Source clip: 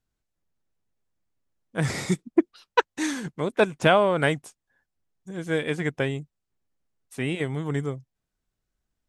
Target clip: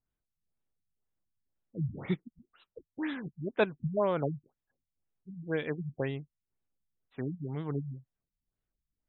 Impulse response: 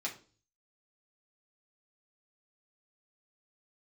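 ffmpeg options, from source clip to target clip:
-af "afftfilt=real='re*lt(b*sr/1024,200*pow(4100/200,0.5+0.5*sin(2*PI*2*pts/sr)))':imag='im*lt(b*sr/1024,200*pow(4100/200,0.5+0.5*sin(2*PI*2*pts/sr)))':win_size=1024:overlap=0.75,volume=-6.5dB"

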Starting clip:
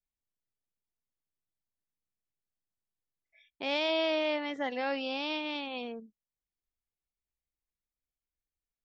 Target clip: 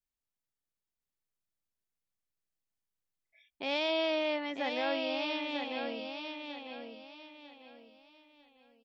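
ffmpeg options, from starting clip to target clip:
-af "aecho=1:1:948|1896|2844|3792:0.501|0.16|0.0513|0.0164,volume=-1.5dB"

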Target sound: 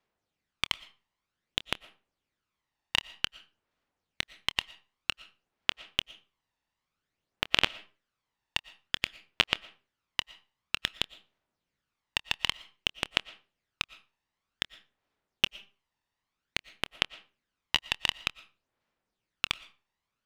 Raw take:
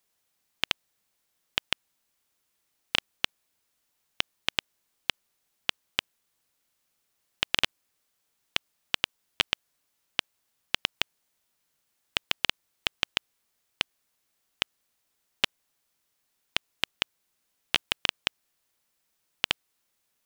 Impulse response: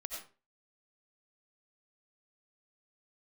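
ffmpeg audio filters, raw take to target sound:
-filter_complex "[0:a]adynamicsmooth=sensitivity=5:basefreq=3.6k,aphaser=in_gain=1:out_gain=1:delay=1.1:decay=0.5:speed=0.53:type=sinusoidal,asplit=2[a][b];[1:a]atrim=start_sample=2205,adelay=26[c];[b][c]afir=irnorm=-1:irlink=0,volume=-16dB[d];[a][d]amix=inputs=2:normalize=0,volume=-3dB"

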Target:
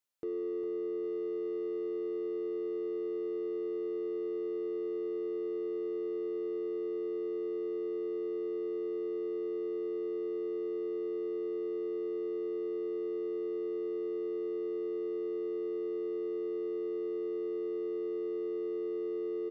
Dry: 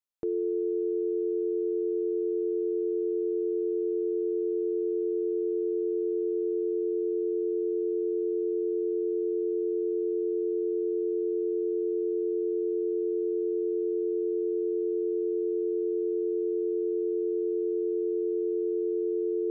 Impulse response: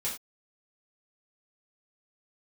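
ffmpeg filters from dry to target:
-filter_complex "[0:a]asplit=2[a][b];[b]asoftclip=type=tanh:threshold=-39dB,volume=-5dB[c];[a][c]amix=inputs=2:normalize=0,aecho=1:1:405|810|1215|1620|2025|2430:0.316|0.161|0.0823|0.0419|0.0214|0.0109,alimiter=level_in=6dB:limit=-24dB:level=0:latency=1:release=20,volume=-6dB,lowshelf=f=68:g=-11"

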